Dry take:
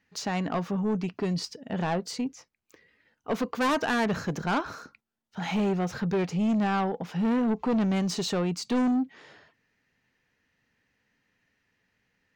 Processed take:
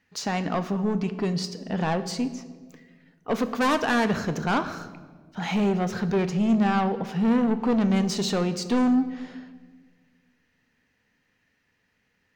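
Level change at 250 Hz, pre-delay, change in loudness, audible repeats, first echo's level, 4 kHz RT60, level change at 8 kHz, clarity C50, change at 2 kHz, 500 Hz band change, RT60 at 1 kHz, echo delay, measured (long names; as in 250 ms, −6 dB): +3.5 dB, 4 ms, +3.0 dB, no echo audible, no echo audible, 1.0 s, +2.5 dB, 13.0 dB, +3.0 dB, +3.0 dB, 1.3 s, no echo audible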